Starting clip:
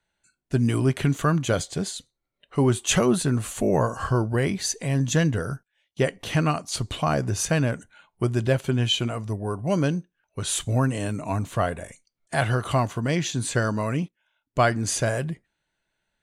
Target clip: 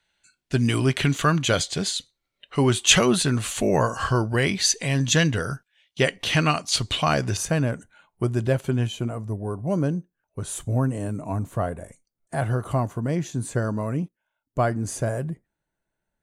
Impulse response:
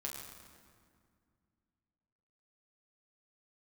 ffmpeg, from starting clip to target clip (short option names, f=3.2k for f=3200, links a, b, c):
-af "asetnsamples=n=441:p=0,asendcmd='7.37 equalizer g -4;8.87 equalizer g -13.5',equalizer=f=3.4k:t=o:w=2.3:g=9.5"